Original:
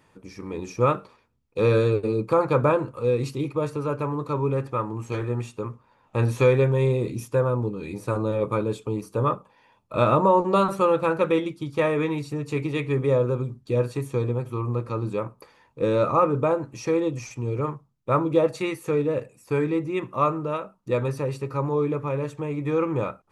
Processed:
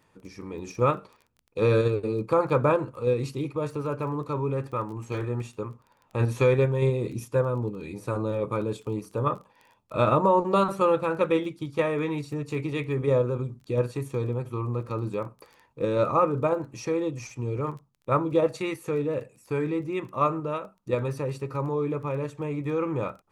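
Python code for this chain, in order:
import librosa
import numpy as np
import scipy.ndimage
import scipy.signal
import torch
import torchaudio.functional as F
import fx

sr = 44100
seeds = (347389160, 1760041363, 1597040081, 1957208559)

p1 = fx.level_steps(x, sr, step_db=10)
p2 = x + (p1 * librosa.db_to_amplitude(0.5))
p3 = fx.dmg_crackle(p2, sr, seeds[0], per_s=14.0, level_db=-33.0)
y = p3 * librosa.db_to_amplitude(-7.0)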